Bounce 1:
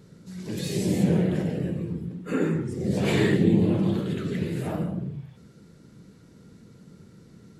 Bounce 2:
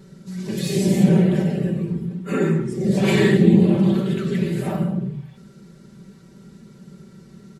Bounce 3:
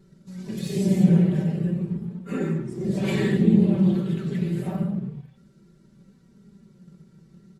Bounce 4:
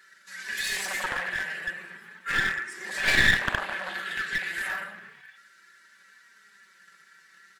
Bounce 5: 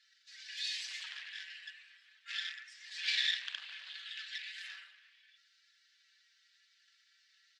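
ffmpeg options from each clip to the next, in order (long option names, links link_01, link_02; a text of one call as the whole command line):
ffmpeg -i in.wav -af "aecho=1:1:5.2:0.8,volume=3dB" out.wav
ffmpeg -i in.wav -filter_complex "[0:a]lowshelf=frequency=230:gain=7,asplit=2[link_01][link_02];[link_02]aeval=exprs='sgn(val(0))*max(abs(val(0))-0.0224,0)':channel_layout=same,volume=-5dB[link_03];[link_01][link_03]amix=inputs=2:normalize=0,flanger=delay=2.8:depth=3.7:regen=64:speed=0.35:shape=triangular,volume=-8dB" out.wav
ffmpeg -i in.wav -filter_complex "[0:a]asplit=2[link_01][link_02];[link_02]aeval=exprs='0.531*sin(PI/2*4.47*val(0)/0.531)':channel_layout=same,volume=-4dB[link_03];[link_01][link_03]amix=inputs=2:normalize=0,highpass=frequency=1700:width_type=q:width=7.7,aeval=exprs='clip(val(0),-1,0.0891)':channel_layout=same,volume=-5.5dB" out.wav
ffmpeg -i in.wav -af "asuperpass=centerf=3900:order=4:qfactor=1.4,volume=-3.5dB" out.wav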